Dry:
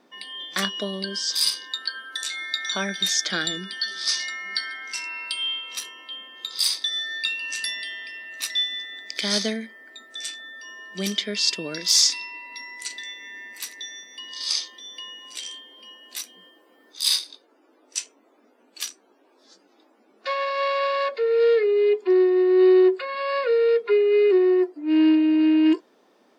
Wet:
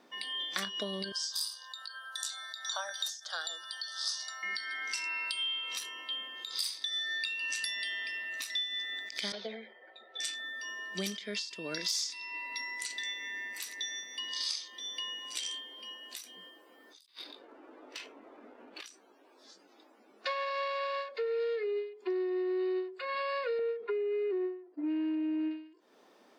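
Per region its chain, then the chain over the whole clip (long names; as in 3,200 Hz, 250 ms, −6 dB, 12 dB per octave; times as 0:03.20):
0:01.12–0:04.43: Butterworth high-pass 420 Hz + phaser with its sweep stopped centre 930 Hz, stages 4
0:09.32–0:10.20: loudspeaker in its box 420–3,200 Hz, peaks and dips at 500 Hz +10 dB, 730 Hz +9 dB, 1,200 Hz −8 dB, 1,800 Hz −7 dB, 2,600 Hz −4 dB + comb filter 5.4 ms, depth 55% + string-ensemble chorus
0:17.06–0:18.86: high-frequency loss of the air 400 metres + compressor whose output falls as the input rises −45 dBFS, ratio −0.5 + leveller curve on the samples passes 1
0:23.59–0:25.51: downward expander −30 dBFS + head-to-tape spacing loss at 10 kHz 29 dB + envelope flattener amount 50%
whole clip: low-shelf EQ 450 Hz −4.5 dB; downward compressor 6 to 1, threshold −32 dBFS; every ending faded ahead of time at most 110 dB per second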